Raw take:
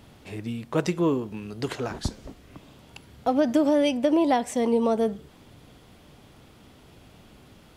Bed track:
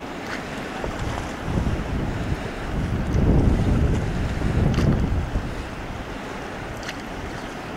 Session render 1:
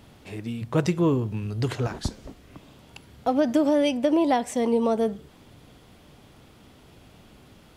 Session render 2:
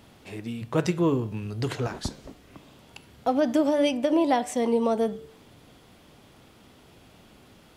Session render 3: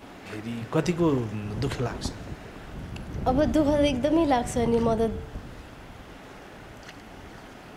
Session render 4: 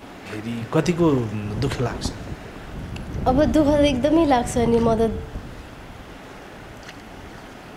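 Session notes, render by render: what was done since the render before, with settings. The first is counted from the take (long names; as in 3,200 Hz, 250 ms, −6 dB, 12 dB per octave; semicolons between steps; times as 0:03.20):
0:00.61–0:01.87: parametric band 110 Hz +14 dB
low-shelf EQ 140 Hz −6 dB; hum removal 148.2 Hz, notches 30
mix in bed track −13 dB
level +5 dB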